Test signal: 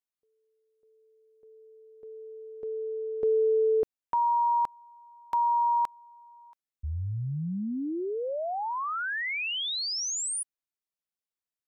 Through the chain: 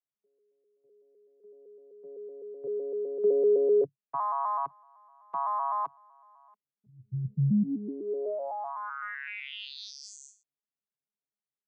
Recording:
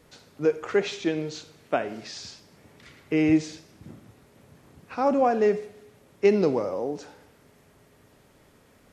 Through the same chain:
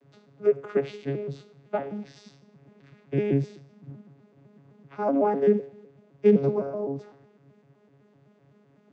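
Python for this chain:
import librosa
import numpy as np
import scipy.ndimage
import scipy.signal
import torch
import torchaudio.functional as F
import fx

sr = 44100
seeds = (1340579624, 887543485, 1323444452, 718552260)

y = fx.vocoder_arp(x, sr, chord='bare fifth', root=49, every_ms=127)
y = fx.air_absorb(y, sr, metres=54.0)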